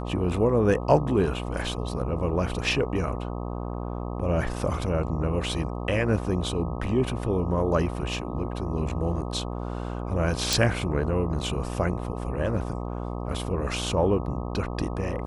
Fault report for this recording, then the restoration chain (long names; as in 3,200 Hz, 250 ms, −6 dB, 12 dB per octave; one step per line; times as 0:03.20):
mains buzz 60 Hz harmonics 21 −32 dBFS
0:10.53: click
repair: click removal
hum removal 60 Hz, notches 21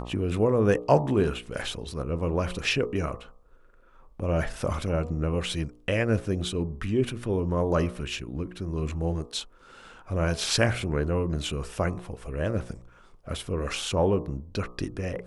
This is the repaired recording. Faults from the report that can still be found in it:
none of them is left